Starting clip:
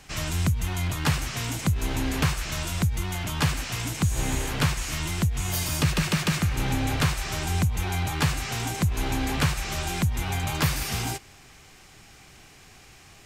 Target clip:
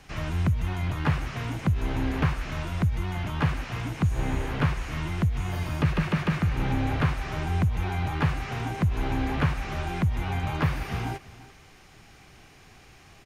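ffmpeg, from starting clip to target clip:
-filter_complex "[0:a]acrossover=split=2800[a][b];[b]acompressor=threshold=-44dB:ratio=4:attack=1:release=60[c];[a][c]amix=inputs=2:normalize=0,highshelf=f=3.6k:g=-7.5,bandreject=f=7.7k:w=9.1,asplit=2[d][e];[e]aecho=0:1:343:0.119[f];[d][f]amix=inputs=2:normalize=0"

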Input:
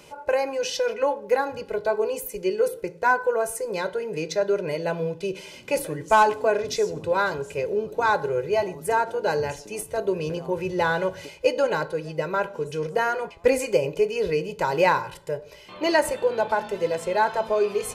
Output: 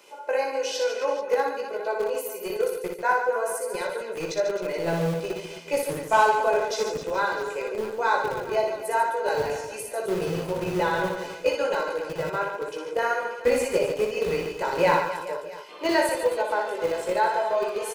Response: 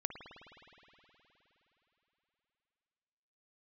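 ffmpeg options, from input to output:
-filter_complex "[0:a]flanger=delay=16:depth=2.3:speed=1.1,acrossover=split=270|5900[a][b][c];[a]acrusher=bits=5:mix=0:aa=0.000001[d];[d][b][c]amix=inputs=3:normalize=0,aecho=1:1:60|144|261.6|426.2|656.7:0.631|0.398|0.251|0.158|0.1"

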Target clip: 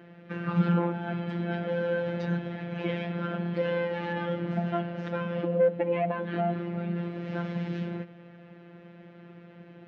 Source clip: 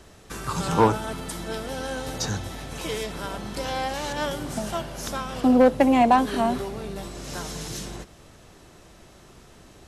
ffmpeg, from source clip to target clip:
-af "alimiter=limit=-18dB:level=0:latency=1:release=289,afftfilt=real='hypot(re,im)*cos(PI*b)':imag='0':win_size=1024:overlap=0.75,highpass=130,equalizer=f=190:t=q:w=4:g=9,equalizer=f=520:t=q:w=4:g=3,equalizer=f=780:t=q:w=4:g=-5,equalizer=f=1.1k:t=q:w=4:g=-9,lowpass=f=2.5k:w=0.5412,lowpass=f=2.5k:w=1.3066,volume=4dB"

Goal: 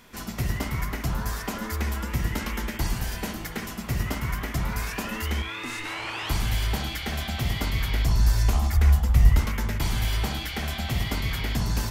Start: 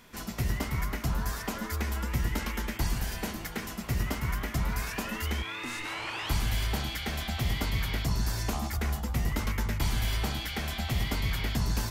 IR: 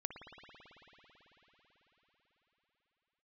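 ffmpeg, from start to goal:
-filter_complex "[0:a]asettb=1/sr,asplit=3[a][b][c];[a]atrim=end=7.564[d];[b]atrim=start=7.56:end=9.39,asetpts=PTS-STARTPTS,afade=t=in:d=0.004:c=qsin,afade=t=out:st=1.826:d=0.004:c=qsin,asubboost=boost=9.5:cutoff=100[e];[c]atrim=start=9.386[f];[d][e]acrossfade=d=0.004:c1=hsin:c2=qsin[g];[g][f]acrossfade=d=0.004:c1=qsin:c2=hsin[h];[1:a]atrim=start_sample=2205,atrim=end_sample=3969[i];[h][i]afir=irnorm=-1:irlink=0,volume=6dB"

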